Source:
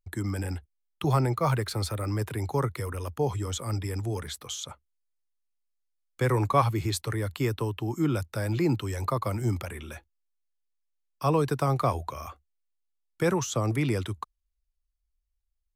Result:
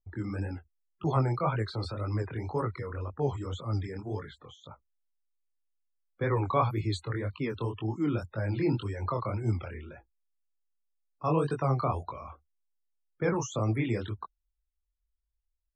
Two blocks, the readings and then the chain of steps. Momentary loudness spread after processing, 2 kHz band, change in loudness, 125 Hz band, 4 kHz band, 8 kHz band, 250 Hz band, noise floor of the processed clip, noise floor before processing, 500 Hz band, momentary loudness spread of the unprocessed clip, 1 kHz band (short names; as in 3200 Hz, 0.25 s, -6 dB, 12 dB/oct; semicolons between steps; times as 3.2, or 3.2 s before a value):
14 LU, -3.5 dB, -3.0 dB, -3.0 dB, -7.5 dB, under -10 dB, -2.5 dB, -82 dBFS, -78 dBFS, -3.0 dB, 11 LU, -3.0 dB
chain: loudest bins only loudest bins 64; low-pass opened by the level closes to 930 Hz, open at -21 dBFS; chorus 1.9 Hz, delay 18 ms, depth 7.9 ms